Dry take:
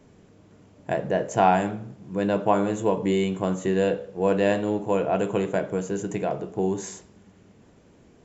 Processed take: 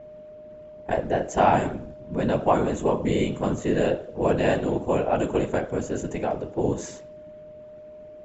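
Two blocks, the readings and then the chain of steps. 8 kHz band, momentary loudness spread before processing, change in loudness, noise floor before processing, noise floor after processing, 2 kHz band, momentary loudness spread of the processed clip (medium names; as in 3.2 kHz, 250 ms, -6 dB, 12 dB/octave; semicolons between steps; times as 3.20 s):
no reading, 10 LU, 0.0 dB, -55 dBFS, -44 dBFS, 0.0 dB, 22 LU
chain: whisper effect; whistle 610 Hz -41 dBFS; level-controlled noise filter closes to 2.9 kHz, open at -20.5 dBFS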